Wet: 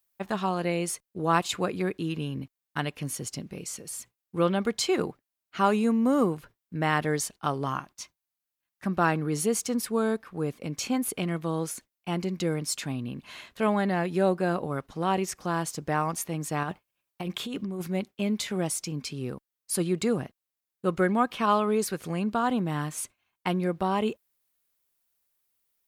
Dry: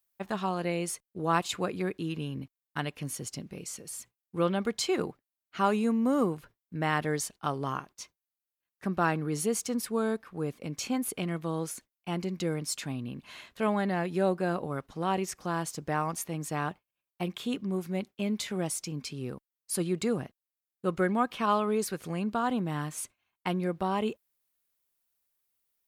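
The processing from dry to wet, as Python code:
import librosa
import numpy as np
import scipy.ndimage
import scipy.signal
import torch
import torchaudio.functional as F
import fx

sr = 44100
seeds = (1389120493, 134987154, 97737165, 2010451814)

y = fx.peak_eq(x, sr, hz=440.0, db=-12.5, octaves=0.28, at=(7.66, 8.93))
y = fx.over_compress(y, sr, threshold_db=-35.0, ratio=-1.0, at=(16.63, 17.88))
y = y * 10.0 ** (3.0 / 20.0)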